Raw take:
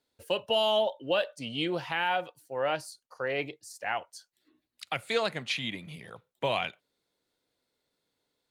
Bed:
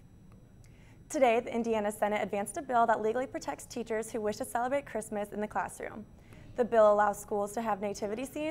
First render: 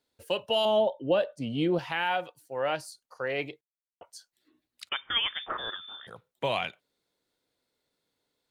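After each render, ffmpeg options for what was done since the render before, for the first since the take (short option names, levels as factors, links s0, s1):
-filter_complex "[0:a]asettb=1/sr,asplit=3[s0][s1][s2];[s0]atrim=end=0.654[s3];[s1]atrim=start=0.65:end=1.79,asetpts=PTS-STARTPTS,afade=t=in:d=0.004:c=qsin,afade=t=out:st=1.136:d=0.004:c=qsin,tiltshelf=f=920:g=7.5[s4];[s2]atrim=start=1.786[s5];[s3][s4]acrossfade=d=0.004:c1=hsin:c2=qsin[s6];[s6][s5]acrossfade=d=0.004:c1=qsin:c2=hsin,asettb=1/sr,asplit=3[s7][s8][s9];[s7]atrim=end=4.894[s10];[s8]atrim=start=4.89:end=6.07,asetpts=PTS-STARTPTS,afade=t=in:d=0.004:c=qsin,afade=t=out:st=1.176:d=0.004:c=qsin,lowpass=f=3100:t=q:w=0.5098,lowpass=f=3100:t=q:w=0.6013,lowpass=f=3100:t=q:w=0.9,lowpass=f=3100:t=q:w=2.563,afreqshift=-3700[s11];[s9]atrim=start=6.066[s12];[s10][s11]acrossfade=d=0.004:c1=hsin:c2=qsin[s13];[s13][s12]acrossfade=d=0.004:c1=qsin:c2=hsin,asplit=3[s14][s15][s16];[s14]atrim=end=3.61,asetpts=PTS-STARTPTS,afade=t=out:st=3.606:d=0.004:c=hsin[s17];[s15]atrim=start=3.61:end=4.01,asetpts=PTS-STARTPTS,volume=0[s18];[s16]atrim=start=4.01,asetpts=PTS-STARTPTS,afade=t=in:d=0.004:c=hsin[s19];[s17][s18][s19]concat=n=3:v=0:a=1"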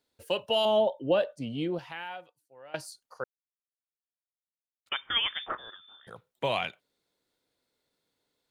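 -filter_complex "[0:a]asplit=6[s0][s1][s2][s3][s4][s5];[s0]atrim=end=2.74,asetpts=PTS-STARTPTS,afade=t=out:st=1.27:d=1.47:c=qua:silence=0.0891251[s6];[s1]atrim=start=2.74:end=3.24,asetpts=PTS-STARTPTS,afade=t=in:d=0.004:c=hsin:silence=0.0891251,afade=t=out:st=0.496:d=0.004:c=hsin[s7];[s2]atrim=start=3.24:end=4.86,asetpts=PTS-STARTPTS,volume=0[s8];[s3]atrim=start=4.86:end=5.552,asetpts=PTS-STARTPTS,afade=t=in:d=0.004:c=hsin[s9];[s4]atrim=start=5.548:end=6.072,asetpts=PTS-STARTPTS,volume=0.299[s10];[s5]atrim=start=6.068[s11];[s6][s7][s8][s9]concat=n=4:v=0:a=1[s12];[s12][s10]acrossfade=d=0.004:c1=hsin:c2=hsin[s13];[s13][s11]acrossfade=d=0.004:c1=hsin:c2=hsin"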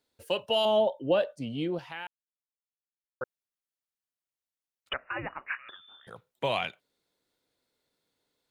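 -filter_complex "[0:a]asettb=1/sr,asplit=3[s0][s1][s2];[s0]atrim=end=4.934[s3];[s1]atrim=start=4.93:end=5.69,asetpts=PTS-STARTPTS,afade=t=in:d=0.004:c=qsin,afade=t=out:st=0.756:d=0.004:c=qsin,lowpass=f=2500:t=q:w=0.5098,lowpass=f=2500:t=q:w=0.6013,lowpass=f=2500:t=q:w=0.9,lowpass=f=2500:t=q:w=2.563,afreqshift=-2900[s4];[s2]atrim=start=5.686[s5];[s3][s4]acrossfade=d=0.004:c1=hsin:c2=qsin[s6];[s6][s5]acrossfade=d=0.004:c1=qsin:c2=hsin,asplit=3[s7][s8][s9];[s7]atrim=end=2.07,asetpts=PTS-STARTPTS,afade=t=out:st=2.066:d=0.004:c=hsin[s10];[s8]atrim=start=2.07:end=3.21,asetpts=PTS-STARTPTS,volume=0[s11];[s9]atrim=start=3.21,asetpts=PTS-STARTPTS,afade=t=in:d=0.004:c=hsin[s12];[s10][s11][s12]concat=n=3:v=0:a=1"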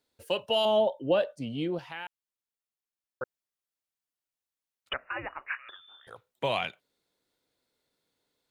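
-filter_complex "[0:a]asettb=1/sr,asplit=3[s0][s1][s2];[s0]atrim=end=5.104[s3];[s1]atrim=start=5.1:end=6.29,asetpts=PTS-STARTPTS,afade=t=in:d=0.004:c=qsin,afade=t=out:st=1.186:d=0.004:c=qsin,equalizer=f=180:w=1.5:g=-13.5[s4];[s2]atrim=start=6.286[s5];[s3][s4]acrossfade=d=0.004:c1=hsin:c2=qsin[s6];[s6][s5]acrossfade=d=0.004:c1=qsin:c2=hsin"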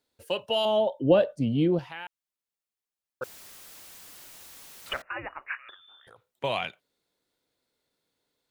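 -filter_complex "[0:a]asettb=1/sr,asplit=3[s0][s1][s2];[s0]atrim=end=1.004[s3];[s1]atrim=start=1:end=1.88,asetpts=PTS-STARTPTS,afade=t=in:d=0.004:c=qsin,afade=t=out:st=0.876:d=0.004:c=qsin,lowshelf=f=480:g=11.5[s4];[s2]atrim=start=1.876[s5];[s3][s4]acrossfade=d=0.004:c1=hsin:c2=qsin[s6];[s6][s5]acrossfade=d=0.004:c1=qsin:c2=hsin,asettb=1/sr,asplit=3[s7][s8][s9];[s7]atrim=end=3.224[s10];[s8]atrim=start=3.22:end=5.02,asetpts=PTS-STARTPTS,afade=t=in:d=0.004:c=qsin,afade=t=out:st=1.796:d=0.004:c=qsin,aeval=exprs='val(0)+0.5*0.0106*sgn(val(0))':c=same[s11];[s9]atrim=start=5.016[s12];[s10][s11]acrossfade=d=0.004:c1=hsin:c2=qsin[s13];[s13][s12]acrossfade=d=0.004:c1=qsin:c2=hsin,asettb=1/sr,asplit=3[s14][s15][s16];[s14]atrim=end=5.744[s17];[s15]atrim=start=5.74:end=6.44,asetpts=PTS-STARTPTS,afade=t=in:d=0.004:c=qsin,afade=t=out:st=0.696:d=0.004:c=qsin,acompressor=threshold=0.00282:ratio=2.5:attack=3.2:release=140:knee=1:detection=peak[s18];[s16]atrim=start=6.436[s19];[s17][s18]acrossfade=d=0.004:c1=hsin:c2=qsin[s20];[s20][s19]acrossfade=d=0.004:c1=qsin:c2=hsin"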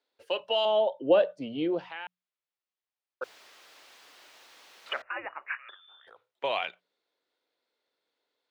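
-filter_complex "[0:a]acrossover=split=320 5100:gain=0.0891 1 0.112[s0][s1][s2];[s0][s1][s2]amix=inputs=3:normalize=0,bandreject=f=60:t=h:w=6,bandreject=f=120:t=h:w=6,bandreject=f=180:t=h:w=6"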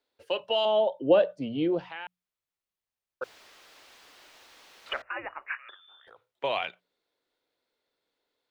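-af "lowshelf=f=160:g=12"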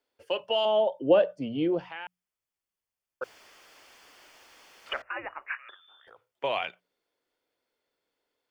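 -af "bandreject=f=3900:w=5.5"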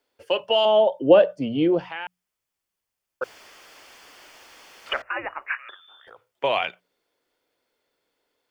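-af "volume=2.11"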